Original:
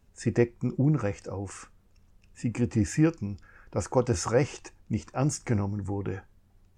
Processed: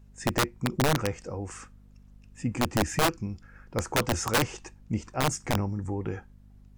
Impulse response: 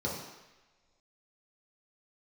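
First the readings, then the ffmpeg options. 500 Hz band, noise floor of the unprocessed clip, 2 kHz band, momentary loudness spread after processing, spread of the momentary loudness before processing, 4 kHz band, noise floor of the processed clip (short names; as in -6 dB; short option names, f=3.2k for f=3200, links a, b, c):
-2.0 dB, -62 dBFS, +7.5 dB, 12 LU, 12 LU, +12.0 dB, -55 dBFS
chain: -af "aeval=exprs='val(0)+0.00251*(sin(2*PI*50*n/s)+sin(2*PI*2*50*n/s)/2+sin(2*PI*3*50*n/s)/3+sin(2*PI*4*50*n/s)/4+sin(2*PI*5*50*n/s)/5)':c=same,aeval=exprs='(mod(7.08*val(0)+1,2)-1)/7.08':c=same"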